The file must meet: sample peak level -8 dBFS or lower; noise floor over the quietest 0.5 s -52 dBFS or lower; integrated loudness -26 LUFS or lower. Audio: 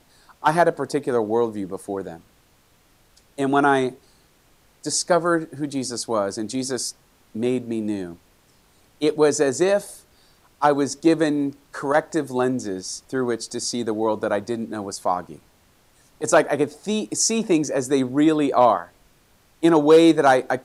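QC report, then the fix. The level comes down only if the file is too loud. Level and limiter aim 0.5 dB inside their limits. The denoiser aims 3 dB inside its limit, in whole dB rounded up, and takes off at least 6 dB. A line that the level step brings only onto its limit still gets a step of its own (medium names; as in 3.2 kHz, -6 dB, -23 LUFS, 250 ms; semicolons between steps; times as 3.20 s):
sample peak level -5.0 dBFS: fail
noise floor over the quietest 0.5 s -58 dBFS: pass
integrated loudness -21.5 LUFS: fail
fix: trim -5 dB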